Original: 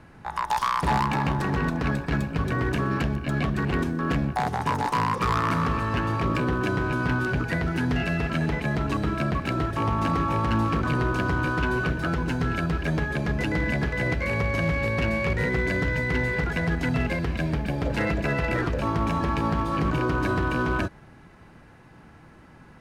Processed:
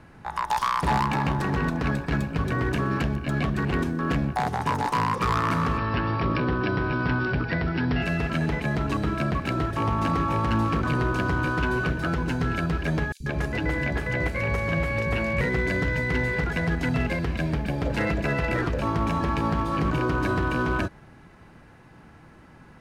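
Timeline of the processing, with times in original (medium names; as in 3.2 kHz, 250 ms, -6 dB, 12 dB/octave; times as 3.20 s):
5.78–8.02 s: brick-wall FIR low-pass 5.7 kHz
13.12–15.41 s: three bands offset in time highs, lows, mids 80/140 ms, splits 210/4600 Hz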